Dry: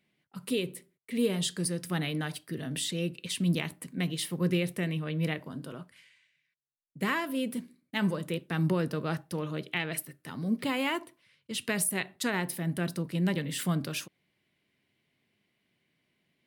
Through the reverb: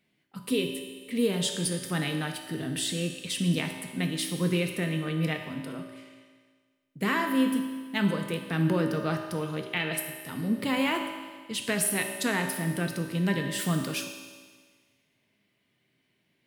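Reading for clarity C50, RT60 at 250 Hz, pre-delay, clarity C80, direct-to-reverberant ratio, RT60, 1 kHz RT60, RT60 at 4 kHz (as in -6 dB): 6.0 dB, 1.6 s, 3 ms, 7.0 dB, 3.5 dB, 1.6 s, 1.6 s, 1.6 s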